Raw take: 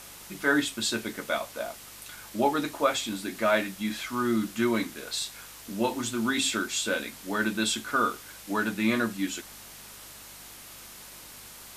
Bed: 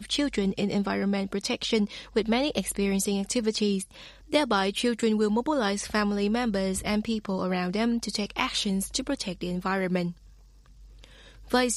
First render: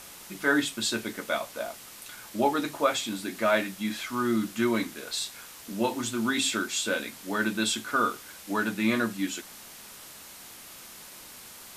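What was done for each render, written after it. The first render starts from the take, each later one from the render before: de-hum 50 Hz, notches 3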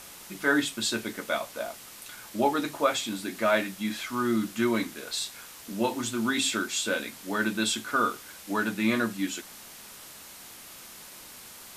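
nothing audible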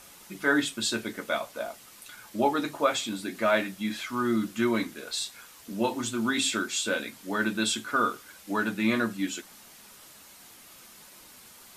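denoiser 6 dB, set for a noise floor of -47 dBFS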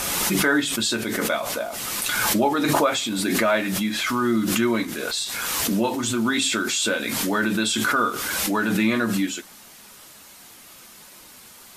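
in parallel at -2.5 dB: limiter -19 dBFS, peak gain reduction 8.5 dB; on the sum: backwards sustainer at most 20 dB/s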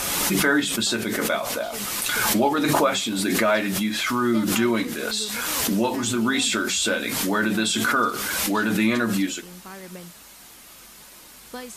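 add bed -13 dB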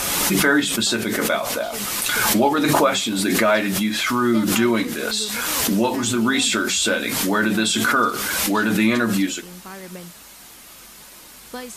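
gain +3 dB

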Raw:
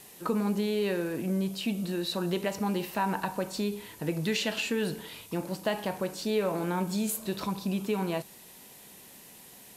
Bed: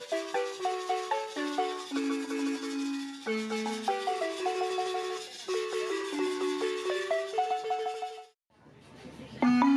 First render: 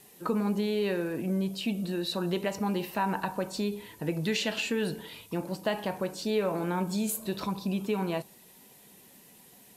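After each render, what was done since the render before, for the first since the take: denoiser 6 dB, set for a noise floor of -51 dBFS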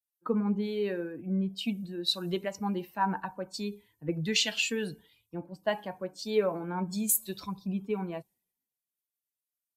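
per-bin expansion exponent 1.5; three-band expander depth 100%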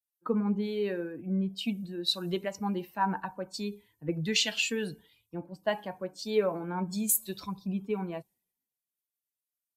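nothing audible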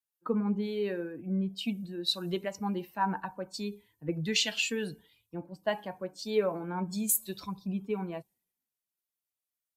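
gain -1 dB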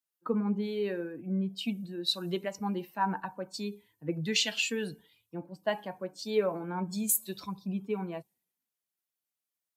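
HPF 100 Hz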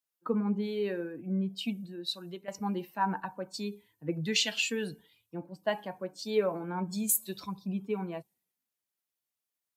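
1.6–2.48 fade out, to -14 dB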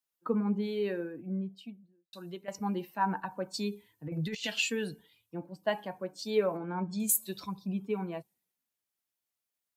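0.88–2.13 studio fade out; 3.31–4.5 negative-ratio compressor -33 dBFS, ratio -0.5; 6.57–7 air absorption 110 m

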